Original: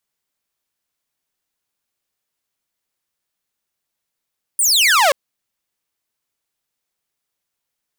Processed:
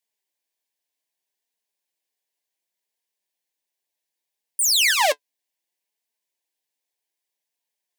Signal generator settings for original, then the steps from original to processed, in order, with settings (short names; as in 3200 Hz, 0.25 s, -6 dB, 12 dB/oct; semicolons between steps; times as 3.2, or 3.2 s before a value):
laser zap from 9800 Hz, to 520 Hz, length 0.53 s saw, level -8 dB
HPF 320 Hz; flange 0.66 Hz, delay 4.1 ms, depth 3.4 ms, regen +52%; Butterworth band-stop 1300 Hz, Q 2.4